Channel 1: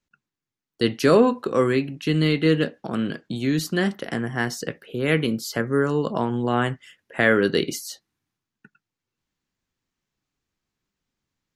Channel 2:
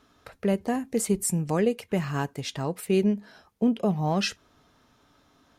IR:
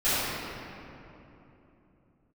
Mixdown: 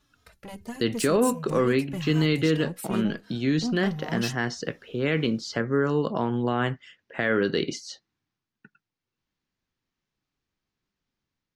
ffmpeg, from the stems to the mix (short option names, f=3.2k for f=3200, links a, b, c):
-filter_complex "[0:a]lowpass=f=6.1k:w=0.5412,lowpass=f=6.1k:w=1.3066,volume=-5dB[a];[1:a]equalizer=f=610:w=0.32:g=-10.5,asoftclip=type=tanh:threshold=-29dB,asplit=2[b][c];[c]adelay=3,afreqshift=-2.6[d];[b][d]amix=inputs=2:normalize=1,volume=1.5dB[e];[a][e]amix=inputs=2:normalize=0,dynaudnorm=f=180:g=5:m=3.5dB,alimiter=limit=-13dB:level=0:latency=1:release=43"